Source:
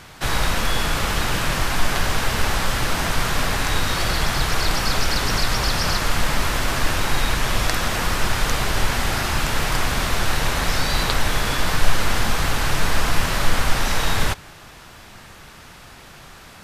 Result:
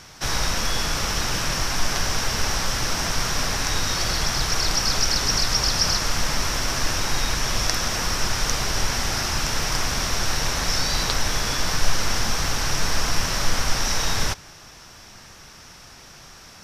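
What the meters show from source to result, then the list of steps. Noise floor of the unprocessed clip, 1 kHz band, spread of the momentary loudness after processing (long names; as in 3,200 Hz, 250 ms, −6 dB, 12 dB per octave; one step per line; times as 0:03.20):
−43 dBFS, −4.0 dB, 4 LU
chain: parametric band 5,600 Hz +14 dB 0.37 octaves
level −4 dB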